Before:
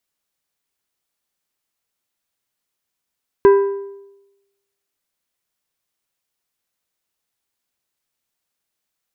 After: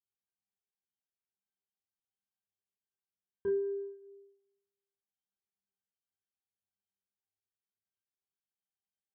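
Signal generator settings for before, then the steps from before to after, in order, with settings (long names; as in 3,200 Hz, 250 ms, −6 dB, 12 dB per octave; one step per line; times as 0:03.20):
struck metal plate, lowest mode 397 Hz, decay 0.97 s, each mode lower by 10 dB, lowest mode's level −4.5 dB
resonances in every octave G, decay 0.36 s
downward compressor 2.5 to 1, threshold −32 dBFS
multi-voice chorus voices 2, 0.22 Hz, delay 28 ms, depth 3.5 ms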